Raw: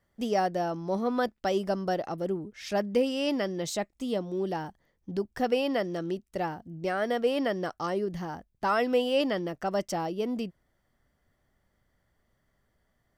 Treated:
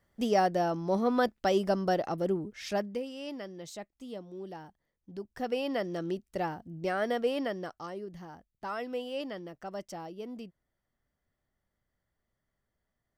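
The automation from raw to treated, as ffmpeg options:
-af "volume=3.55,afade=t=out:st=2.57:d=0.43:silence=0.237137,afade=t=in:st=5.1:d=0.97:silence=0.316228,afade=t=out:st=7.04:d=0.88:silence=0.354813"

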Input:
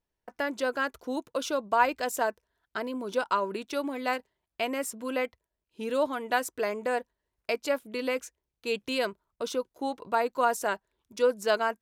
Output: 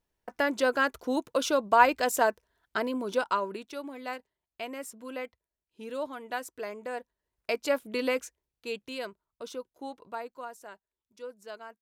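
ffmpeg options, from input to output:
-af "volume=4.73,afade=t=out:st=2.81:d=0.93:silence=0.281838,afade=t=in:st=6.93:d=1.03:silence=0.316228,afade=t=out:st=7.96:d=0.9:silence=0.298538,afade=t=out:st=9.9:d=0.61:silence=0.334965"

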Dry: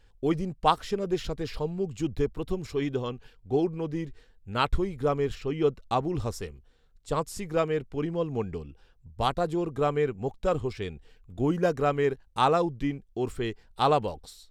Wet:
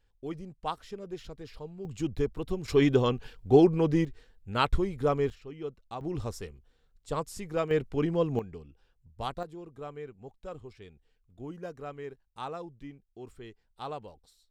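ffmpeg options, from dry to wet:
-af "asetnsamples=n=441:p=0,asendcmd='1.85 volume volume -2dB;2.68 volume volume 6.5dB;4.05 volume volume -0.5dB;5.3 volume volume -13dB;6.01 volume volume -4dB;7.71 volume volume 2dB;8.39 volume volume -8.5dB;9.43 volume volume -15.5dB',volume=0.266"

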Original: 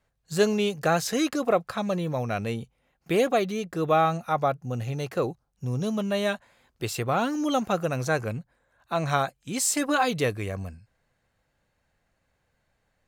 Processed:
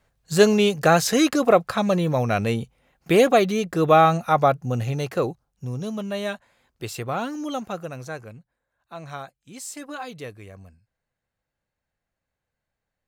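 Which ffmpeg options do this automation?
-af "volume=2.11,afade=t=out:st=4.58:d=1.21:silence=0.375837,afade=t=out:st=7.14:d=1.19:silence=0.354813"

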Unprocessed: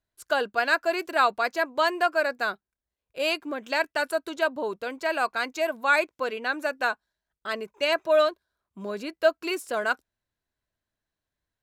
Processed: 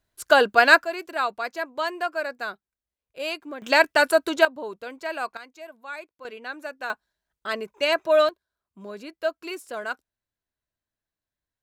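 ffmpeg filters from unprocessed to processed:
-af "asetnsamples=n=441:p=0,asendcmd='0.84 volume volume -4dB;3.62 volume volume 8dB;4.45 volume volume -4dB;5.37 volume volume -15dB;6.25 volume volume -7dB;6.9 volume volume 2dB;8.29 volume volume -5dB',volume=2.66"

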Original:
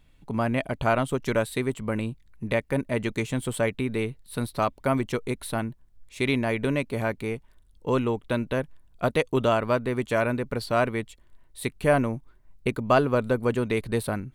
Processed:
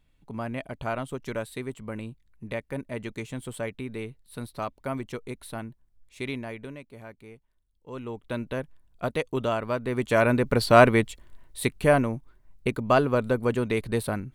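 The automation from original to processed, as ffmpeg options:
-af "volume=7.94,afade=t=out:st=6.22:d=0.57:silence=0.334965,afade=t=in:st=7.89:d=0.51:silence=0.237137,afade=t=in:st=9.77:d=1.06:silence=0.223872,afade=t=out:st=10.83:d=1.22:silence=0.354813"

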